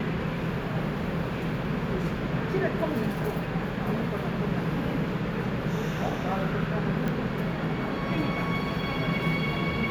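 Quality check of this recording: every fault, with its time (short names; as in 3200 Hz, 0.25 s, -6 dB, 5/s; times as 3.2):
7.08 pop -18 dBFS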